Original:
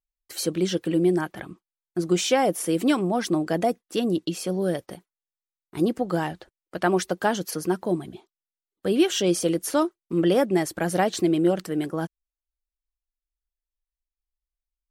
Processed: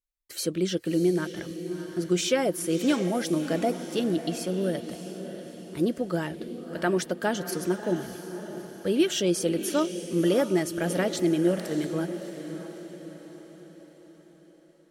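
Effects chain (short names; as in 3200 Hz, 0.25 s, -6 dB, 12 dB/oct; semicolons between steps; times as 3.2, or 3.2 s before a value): Butterworth band-stop 770 Hz, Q 7.7; bell 1000 Hz -7.5 dB 0.34 oct; on a send: diffused feedback echo 0.64 s, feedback 49%, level -10 dB; on the sum: gain -2.5 dB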